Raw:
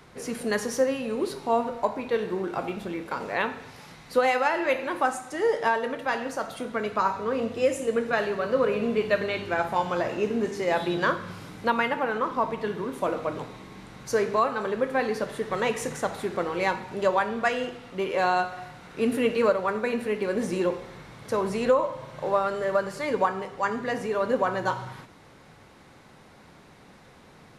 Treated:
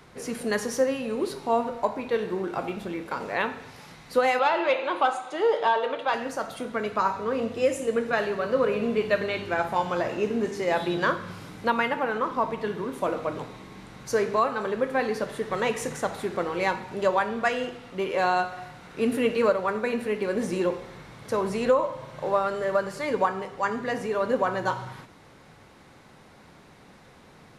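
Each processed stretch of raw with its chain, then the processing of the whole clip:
4.39–6.14 s: overdrive pedal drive 12 dB, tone 2.5 kHz, clips at -10.5 dBFS + cabinet simulation 180–9700 Hz, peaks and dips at 240 Hz -8 dB, 1.8 kHz -10 dB, 3.5 kHz +6 dB, 5.6 kHz -8 dB, 8 kHz -7 dB
whole clip: none

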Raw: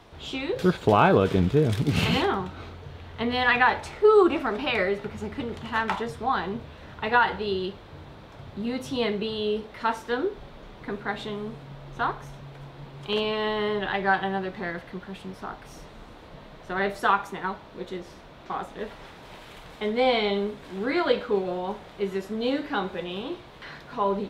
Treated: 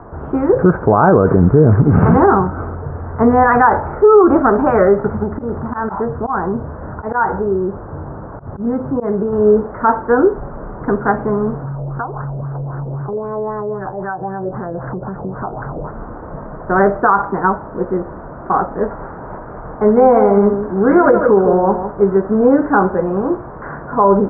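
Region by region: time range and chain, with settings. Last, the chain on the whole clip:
5.23–9.33 s: treble shelf 3.7 kHz -11.5 dB + slow attack 109 ms + compression 1.5:1, threshold -38 dBFS
11.64–15.91 s: peaking EQ 130 Hz +12 dB 0.34 oct + compression 20:1, threshold -37 dBFS + LFO low-pass sine 3.8 Hz 510–1700 Hz
19.38–22.17 s: delay 154 ms -8.5 dB + tape noise reduction on one side only decoder only
whole clip: steep low-pass 1.5 kHz 48 dB/octave; loudness maximiser +17.5 dB; trim -1 dB

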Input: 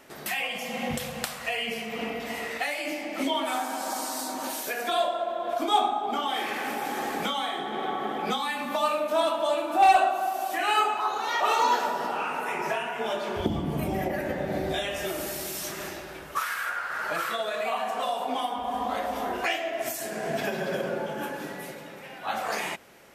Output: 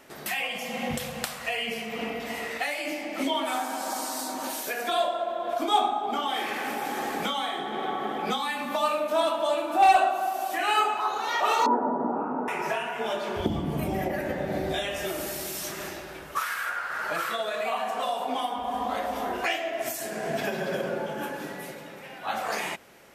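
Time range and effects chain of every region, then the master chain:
11.66–12.48 s: low-pass 1.1 kHz 24 dB/octave + peaking EQ 260 Hz +14 dB 0.88 oct
whole clip: none

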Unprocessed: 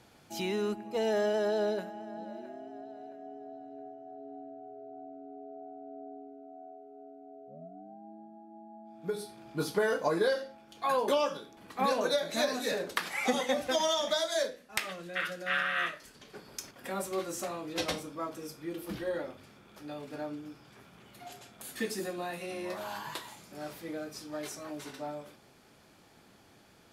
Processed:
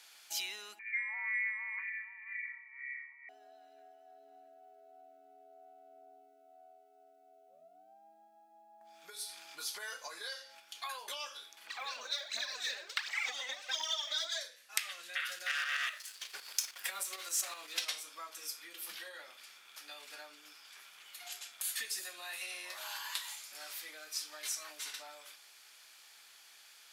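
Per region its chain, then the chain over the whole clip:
0.79–3.29 s: frequency inversion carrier 2.6 kHz + LFO band-pass sine 2 Hz 790–2000 Hz
8.81–10.60 s: peaking EQ 6.4 kHz +3 dB 0.7 oct + upward compressor, threshold -40 dBFS
11.67–14.41 s: boxcar filter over 4 samples + phaser 1.4 Hz, delay 4.1 ms, feedback 64% + upward compressor, threshold -39 dBFS
15.26–17.85 s: waveshaping leveller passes 2 + tremolo saw up 7.9 Hz, depth 55%
whole clip: compression 3:1, threshold -39 dBFS; Bessel high-pass 2.6 kHz, order 2; trim +9 dB

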